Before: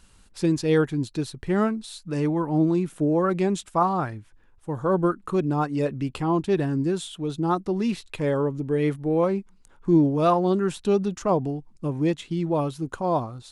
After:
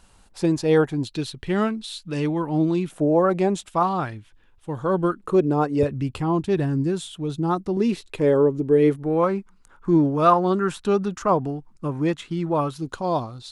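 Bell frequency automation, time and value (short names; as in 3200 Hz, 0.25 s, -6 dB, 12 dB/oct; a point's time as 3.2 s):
bell +9 dB 1 oct
740 Hz
from 1.05 s 3200 Hz
from 2.91 s 680 Hz
from 3.67 s 3200 Hz
from 5.19 s 460 Hz
from 5.83 s 92 Hz
from 7.77 s 390 Hz
from 9.03 s 1300 Hz
from 12.76 s 4200 Hz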